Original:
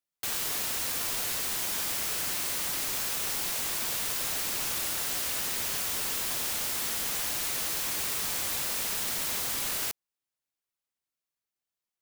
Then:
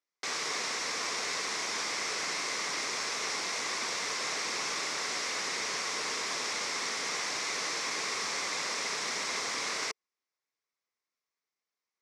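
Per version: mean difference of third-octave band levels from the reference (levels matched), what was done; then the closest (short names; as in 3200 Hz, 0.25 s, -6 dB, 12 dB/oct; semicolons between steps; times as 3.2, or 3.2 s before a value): 7.5 dB: speaker cabinet 220–6700 Hz, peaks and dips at 440 Hz +6 dB, 1100 Hz +7 dB, 2100 Hz +8 dB, 3000 Hz -5 dB, 5500 Hz +5 dB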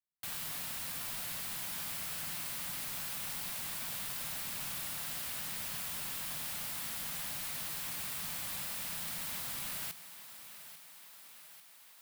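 2.0 dB: fifteen-band EQ 160 Hz +8 dB, 400 Hz -10 dB, 6300 Hz -5 dB; thinning echo 0.844 s, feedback 66%, high-pass 220 Hz, level -13 dB; gain -8 dB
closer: second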